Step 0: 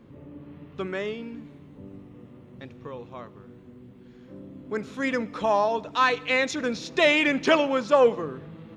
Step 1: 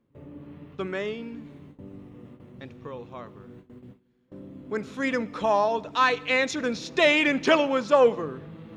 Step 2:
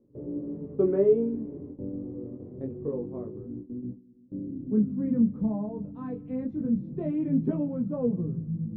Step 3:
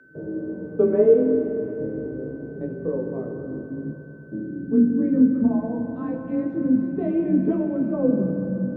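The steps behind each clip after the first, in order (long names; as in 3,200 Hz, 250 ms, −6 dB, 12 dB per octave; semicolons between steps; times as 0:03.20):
reversed playback; upward compression, threshold −41 dBFS; reversed playback; noise gate with hold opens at −37 dBFS
chorus effect 0.25 Hz, delay 16.5 ms, depth 7.8 ms; low-pass filter sweep 430 Hz → 180 Hz, 0:02.52–0:05.60; level +7 dB
steady tone 1,500 Hz −56 dBFS; frequency shifter +27 Hz; spring reverb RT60 3.6 s, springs 42/46 ms, chirp 45 ms, DRR 4.5 dB; level +5 dB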